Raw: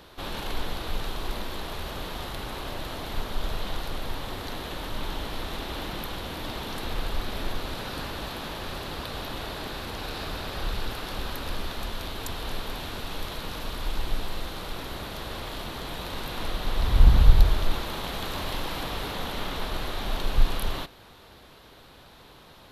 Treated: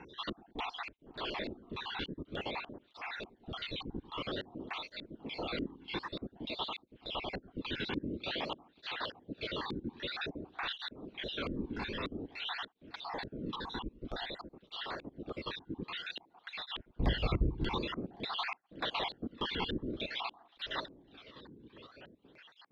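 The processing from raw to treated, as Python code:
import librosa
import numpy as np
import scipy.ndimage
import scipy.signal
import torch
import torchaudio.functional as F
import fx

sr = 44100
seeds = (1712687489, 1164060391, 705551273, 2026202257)

p1 = fx.spec_dropout(x, sr, seeds[0], share_pct=57)
p2 = scipy.signal.sosfilt(scipy.signal.butter(2, 5300.0, 'lowpass', fs=sr, output='sos'), p1)
p3 = p2 + fx.echo_wet_lowpass(p2, sr, ms=101, feedback_pct=59, hz=730.0, wet_db=-17.0, dry=0)
p4 = fx.filter_lfo_lowpass(p3, sr, shape='square', hz=1.7, low_hz=280.0, high_hz=3300.0, q=1.7)
p5 = fx.echo_thinned(p4, sr, ms=555, feedback_pct=48, hz=450.0, wet_db=-22)
p6 = fx.flanger_cancel(p5, sr, hz=0.51, depth_ms=1.7)
y = F.gain(torch.from_numpy(p6), 2.5).numpy()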